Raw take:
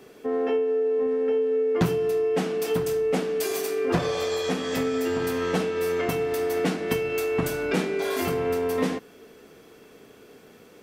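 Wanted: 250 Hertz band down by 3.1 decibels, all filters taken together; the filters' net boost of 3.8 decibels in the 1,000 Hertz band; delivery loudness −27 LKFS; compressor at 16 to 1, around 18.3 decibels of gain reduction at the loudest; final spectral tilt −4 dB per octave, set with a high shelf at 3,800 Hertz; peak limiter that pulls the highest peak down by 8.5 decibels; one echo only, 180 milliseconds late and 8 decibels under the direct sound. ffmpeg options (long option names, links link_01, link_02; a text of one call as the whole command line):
ffmpeg -i in.wav -af "equalizer=frequency=250:width_type=o:gain=-4.5,equalizer=frequency=1000:width_type=o:gain=5,highshelf=frequency=3800:gain=6,acompressor=threshold=-37dB:ratio=16,alimiter=level_in=11.5dB:limit=-24dB:level=0:latency=1,volume=-11.5dB,aecho=1:1:180:0.398,volume=16dB" out.wav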